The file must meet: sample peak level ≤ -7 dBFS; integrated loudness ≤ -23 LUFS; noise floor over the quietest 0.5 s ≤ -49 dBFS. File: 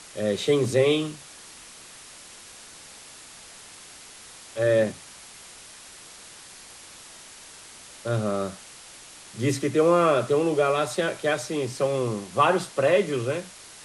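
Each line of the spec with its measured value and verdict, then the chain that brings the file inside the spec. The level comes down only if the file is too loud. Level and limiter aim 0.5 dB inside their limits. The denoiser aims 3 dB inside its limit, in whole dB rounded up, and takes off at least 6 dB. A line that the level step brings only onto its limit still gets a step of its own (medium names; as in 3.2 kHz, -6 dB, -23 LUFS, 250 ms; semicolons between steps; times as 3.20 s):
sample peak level -7.5 dBFS: pass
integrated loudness -24.0 LUFS: pass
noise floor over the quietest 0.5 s -46 dBFS: fail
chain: noise reduction 6 dB, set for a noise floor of -46 dBFS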